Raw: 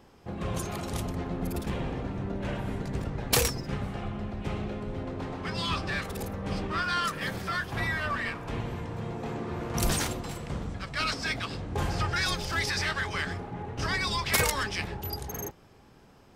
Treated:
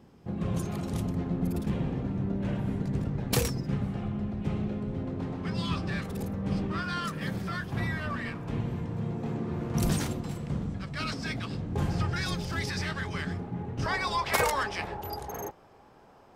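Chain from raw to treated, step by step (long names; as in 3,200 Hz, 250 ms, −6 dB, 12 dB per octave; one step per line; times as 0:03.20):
parametric band 170 Hz +11.5 dB 2.2 octaves, from 0:13.86 770 Hz
level −6 dB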